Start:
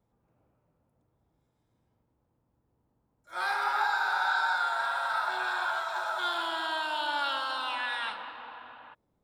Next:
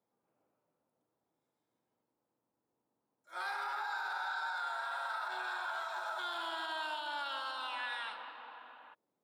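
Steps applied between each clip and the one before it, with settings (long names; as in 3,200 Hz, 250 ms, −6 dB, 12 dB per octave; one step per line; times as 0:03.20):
high-pass filter 280 Hz 12 dB per octave
brickwall limiter −24 dBFS, peak gain reduction 7 dB
level −6 dB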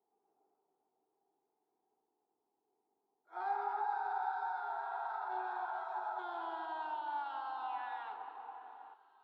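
pair of resonant band-passes 560 Hz, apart 0.91 octaves
feedback echo with a high-pass in the loop 798 ms, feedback 62%, high-pass 540 Hz, level −21 dB
level +9.5 dB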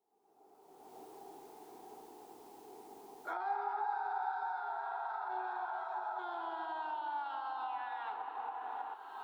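camcorder AGC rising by 31 dB per second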